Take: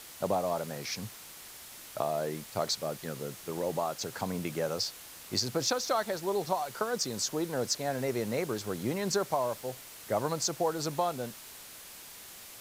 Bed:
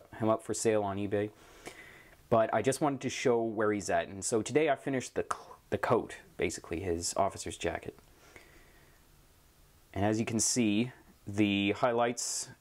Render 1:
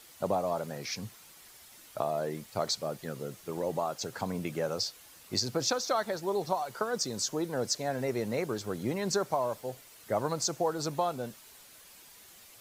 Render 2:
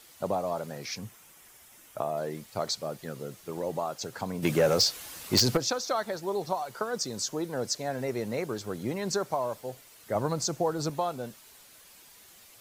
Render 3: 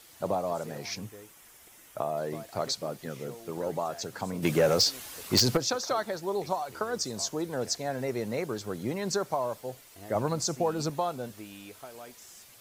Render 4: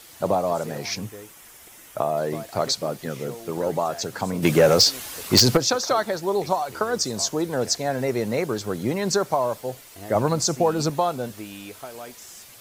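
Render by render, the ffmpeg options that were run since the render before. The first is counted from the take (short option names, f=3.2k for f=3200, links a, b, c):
-af "afftdn=nr=8:nf=-49"
-filter_complex "[0:a]asettb=1/sr,asplit=3[a][b][c];[a]atrim=end=0.984[d];[b]atrim=start=0.98:end=2.17,asetpts=PTS-STARTPTS,afade=t=in:d=0.004:c=qsin,afade=t=out:st=1.186:d=0.004:c=qsin,equalizer=f=4.3k:w=2.7:g=-8[e];[c]atrim=start=2.166[f];[d][e]acrossfade=d=0.004:c1=hsin:c2=qsin[g];[g][f]acrossfade=d=0.004:c1=qsin:c2=hsin,asplit=3[h][i][j];[h]afade=t=out:st=4.42:d=0.02[k];[i]aeval=exprs='0.158*sin(PI/2*2.24*val(0)/0.158)':c=same,afade=t=in:st=4.42:d=0.02,afade=t=out:st=5.56:d=0.02[l];[j]afade=t=in:st=5.56:d=0.02[m];[k][l][m]amix=inputs=3:normalize=0,asettb=1/sr,asplit=3[n][o][p];[n]atrim=end=10.154[q];[o]atrim=start=10.15:end=10.9,asetpts=PTS-STARTPTS,afade=t=in:d=0.004:c=qsin,afade=t=out:st=0.746:d=0.004:c=qsin,lowshelf=f=290:g=7[r];[p]atrim=start=10.896[s];[q][r]acrossfade=d=0.004:c1=hsin:c2=qsin[t];[t][s]acrossfade=d=0.004:c1=qsin:c2=hsin"
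-filter_complex "[1:a]volume=-17.5dB[a];[0:a][a]amix=inputs=2:normalize=0"
-af "volume=7.5dB"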